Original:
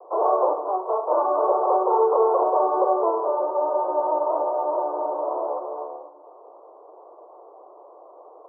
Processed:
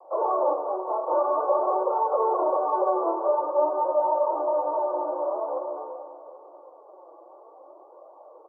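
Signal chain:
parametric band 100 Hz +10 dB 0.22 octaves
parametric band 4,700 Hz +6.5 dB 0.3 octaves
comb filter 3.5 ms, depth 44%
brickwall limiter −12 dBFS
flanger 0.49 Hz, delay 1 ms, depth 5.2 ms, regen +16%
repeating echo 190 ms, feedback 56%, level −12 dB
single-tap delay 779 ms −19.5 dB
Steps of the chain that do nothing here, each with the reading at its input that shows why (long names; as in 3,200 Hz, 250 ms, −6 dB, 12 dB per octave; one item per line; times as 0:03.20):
parametric band 100 Hz: nothing at its input below 290 Hz
parametric band 4,700 Hz: nothing at its input above 1,300 Hz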